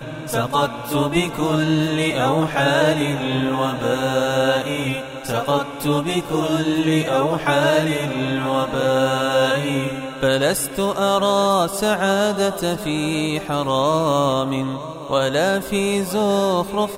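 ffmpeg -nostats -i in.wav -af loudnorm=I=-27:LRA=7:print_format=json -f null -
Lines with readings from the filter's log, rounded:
"input_i" : "-19.8",
"input_tp" : "-4.8",
"input_lra" : "1.1",
"input_thresh" : "-29.8",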